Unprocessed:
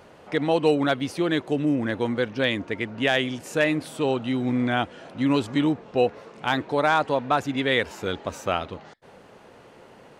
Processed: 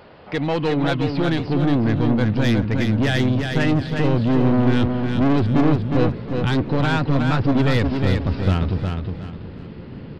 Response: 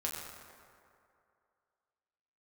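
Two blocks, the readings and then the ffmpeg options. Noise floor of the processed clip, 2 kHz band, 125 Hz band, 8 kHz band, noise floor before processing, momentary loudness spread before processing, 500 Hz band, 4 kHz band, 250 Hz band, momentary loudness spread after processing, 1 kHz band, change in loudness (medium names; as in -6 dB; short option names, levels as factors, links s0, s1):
-36 dBFS, 0.0 dB, +14.5 dB, no reading, -50 dBFS, 8 LU, +1.0 dB, 0.0 dB, +6.5 dB, 9 LU, -0.5 dB, +4.5 dB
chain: -af "asubboost=boost=12:cutoff=200,aresample=11025,asoftclip=type=tanh:threshold=0.178,aresample=44100,aeval=exprs='0.211*(cos(1*acos(clip(val(0)/0.211,-1,1)))-cos(1*PI/2))+0.0531*(cos(2*acos(clip(val(0)/0.211,-1,1)))-cos(2*PI/2))+0.0188*(cos(5*acos(clip(val(0)/0.211,-1,1)))-cos(5*PI/2))':c=same,aecho=1:1:361|722|1083|1444:0.562|0.174|0.054|0.0168,volume=1.12"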